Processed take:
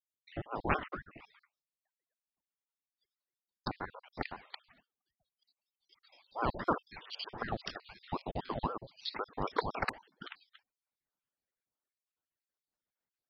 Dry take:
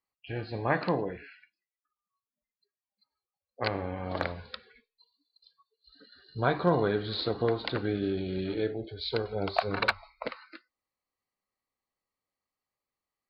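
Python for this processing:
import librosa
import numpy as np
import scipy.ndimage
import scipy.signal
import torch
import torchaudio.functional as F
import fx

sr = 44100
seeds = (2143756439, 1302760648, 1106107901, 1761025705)

y = fx.spec_dropout(x, sr, seeds[0], share_pct=66)
y = fx.ring_lfo(y, sr, carrier_hz=570.0, swing_pct=65, hz=3.9)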